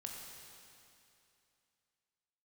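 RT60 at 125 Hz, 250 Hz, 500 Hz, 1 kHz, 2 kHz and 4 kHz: 2.7 s, 2.7 s, 2.7 s, 2.7 s, 2.7 s, 2.6 s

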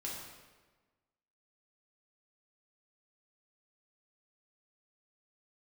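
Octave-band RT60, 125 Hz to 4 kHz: 1.4 s, 1.4 s, 1.4 s, 1.3 s, 1.2 s, 1.0 s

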